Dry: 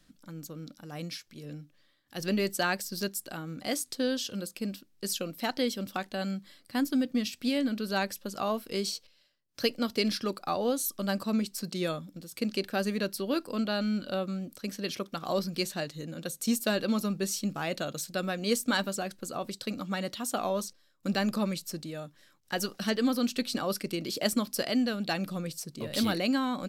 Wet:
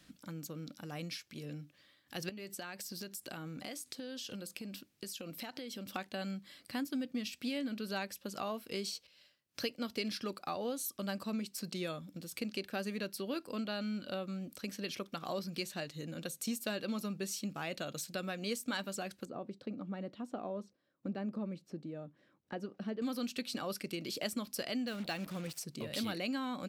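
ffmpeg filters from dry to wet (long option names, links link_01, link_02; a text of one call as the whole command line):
ffmpeg -i in.wav -filter_complex "[0:a]asettb=1/sr,asplit=3[link_01][link_02][link_03];[link_01]atrim=end=2.294[link_04];[link_02]atrim=start=2.29:end=5.94,asetpts=PTS-STARTPTS,afade=type=in:duration=0.004:curve=qsin,afade=type=out:start_time=3.646:duration=0.004:curve=qsin,acompressor=threshold=-38dB:ratio=12:attack=3.2:release=140:knee=1:detection=peak[link_05];[link_03]atrim=start=5.936[link_06];[link_04][link_05]acrossfade=duration=0.004:curve1=hsin:curve2=qsin[link_07];[link_07][link_06]acrossfade=duration=0.004:curve1=qsin:curve2=hsin,asettb=1/sr,asplit=3[link_08][link_09][link_10];[link_08]atrim=end=19.254[link_11];[link_09]atrim=start=19.25:end=23.02,asetpts=PTS-STARTPTS,afade=type=in:duration=0.004:curve=qsin,afade=type=out:start_time=3.766:duration=0.004:curve=qsin,bandpass=frequency=290:width_type=q:width=0.7[link_12];[link_10]atrim=start=23.016[link_13];[link_11][link_12]acrossfade=duration=0.004:curve1=hsin:curve2=qsin[link_14];[link_14][link_13]acrossfade=duration=0.004:curve1=qsin:curve2=hsin,asettb=1/sr,asplit=3[link_15][link_16][link_17];[link_15]atrim=end=24.874[link_18];[link_16]atrim=start=24.87:end=25.59,asetpts=PTS-STARTPTS,afade=type=in:duration=0.004:curve=qsin,afade=type=out:start_time=0.716:duration=0.004:curve=qsin,acrusher=bits=6:mix=0:aa=0.5[link_19];[link_17]atrim=start=25.586[link_20];[link_18][link_19]acrossfade=duration=0.004:curve1=hsin:curve2=qsin[link_21];[link_21][link_20]acrossfade=duration=0.004:curve1=qsin:curve2=hsin,highpass=52,equalizer=frequency=2500:width_type=o:width=0.74:gain=4,acompressor=threshold=-47dB:ratio=2,volume=2.5dB" out.wav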